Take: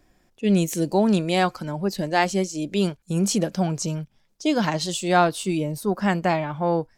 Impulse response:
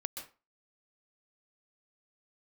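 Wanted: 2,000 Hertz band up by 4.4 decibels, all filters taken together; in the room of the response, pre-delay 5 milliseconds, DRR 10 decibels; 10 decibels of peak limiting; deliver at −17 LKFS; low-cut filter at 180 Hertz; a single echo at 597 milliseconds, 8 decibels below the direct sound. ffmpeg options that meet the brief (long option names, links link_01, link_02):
-filter_complex "[0:a]highpass=180,equalizer=frequency=2000:width_type=o:gain=5.5,alimiter=limit=-12dB:level=0:latency=1,aecho=1:1:597:0.398,asplit=2[link_01][link_02];[1:a]atrim=start_sample=2205,adelay=5[link_03];[link_02][link_03]afir=irnorm=-1:irlink=0,volume=-10dB[link_04];[link_01][link_04]amix=inputs=2:normalize=0,volume=7dB"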